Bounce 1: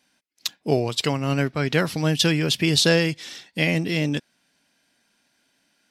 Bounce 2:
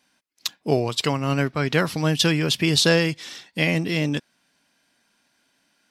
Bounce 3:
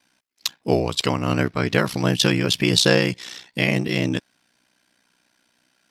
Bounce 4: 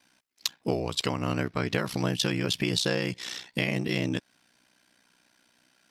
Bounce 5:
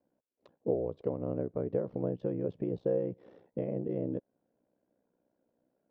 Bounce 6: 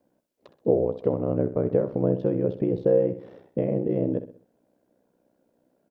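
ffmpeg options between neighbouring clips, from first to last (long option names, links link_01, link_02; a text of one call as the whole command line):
ffmpeg -i in.wav -af "equalizer=frequency=1100:width=2.2:gain=4" out.wav
ffmpeg -i in.wav -af "aeval=exprs='val(0)*sin(2*PI*31*n/s)':channel_layout=same,volume=4dB" out.wav
ffmpeg -i in.wav -af "acompressor=threshold=-25dB:ratio=4" out.wav
ffmpeg -i in.wav -af "lowpass=frequency=510:width_type=q:width=3.4,volume=-8.5dB" out.wav
ffmpeg -i in.wav -af "aecho=1:1:64|128|192|256:0.251|0.103|0.0422|0.0173,volume=9dB" out.wav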